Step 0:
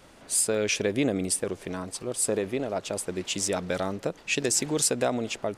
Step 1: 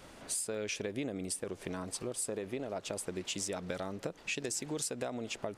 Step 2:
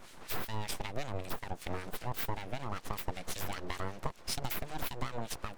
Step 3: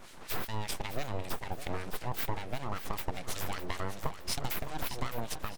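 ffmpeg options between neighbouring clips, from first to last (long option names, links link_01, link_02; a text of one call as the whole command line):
ffmpeg -i in.wav -af "acompressor=threshold=-35dB:ratio=5" out.wav
ffmpeg -i in.wav -filter_complex "[0:a]aeval=exprs='abs(val(0))':channel_layout=same,acrossover=split=1600[link_01][link_02];[link_01]aeval=exprs='val(0)*(1-0.7/2+0.7/2*cos(2*PI*5.2*n/s))':channel_layout=same[link_03];[link_02]aeval=exprs='val(0)*(1-0.7/2-0.7/2*cos(2*PI*5.2*n/s))':channel_layout=same[link_04];[link_03][link_04]amix=inputs=2:normalize=0,volume=6dB" out.wav
ffmpeg -i in.wav -af "aecho=1:1:611|1222|1833|2444:0.266|0.0931|0.0326|0.0114,volume=1.5dB" out.wav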